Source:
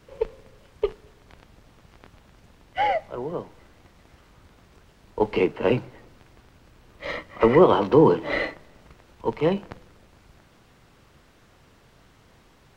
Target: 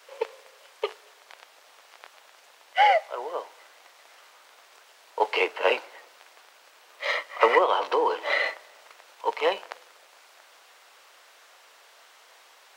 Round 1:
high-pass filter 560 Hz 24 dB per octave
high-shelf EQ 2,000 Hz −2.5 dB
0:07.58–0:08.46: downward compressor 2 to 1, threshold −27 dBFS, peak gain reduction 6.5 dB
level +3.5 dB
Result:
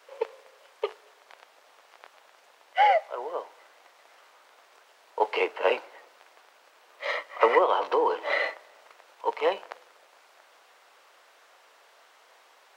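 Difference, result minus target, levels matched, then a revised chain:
4,000 Hz band −3.5 dB
high-pass filter 560 Hz 24 dB per octave
high-shelf EQ 2,000 Hz +5 dB
0:07.58–0:08.46: downward compressor 2 to 1, threshold −27 dBFS, peak gain reduction 7 dB
level +3.5 dB

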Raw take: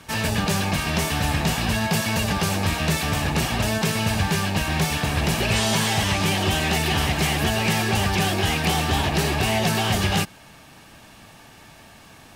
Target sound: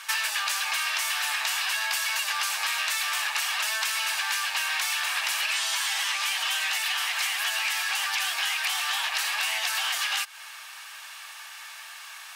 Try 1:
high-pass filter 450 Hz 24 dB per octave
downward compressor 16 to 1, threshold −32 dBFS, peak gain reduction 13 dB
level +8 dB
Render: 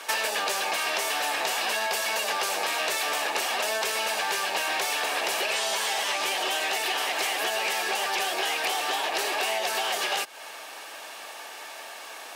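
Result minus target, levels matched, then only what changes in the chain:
500 Hz band +18.5 dB
change: high-pass filter 1,100 Hz 24 dB per octave

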